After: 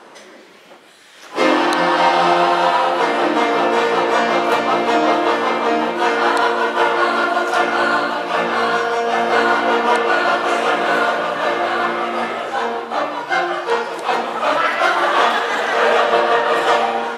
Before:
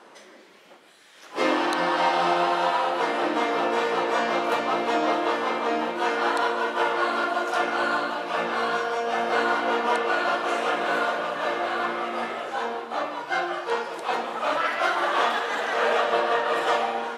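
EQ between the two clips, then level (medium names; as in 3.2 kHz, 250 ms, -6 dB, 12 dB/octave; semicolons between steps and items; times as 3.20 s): bass shelf 78 Hz +8 dB; +8.0 dB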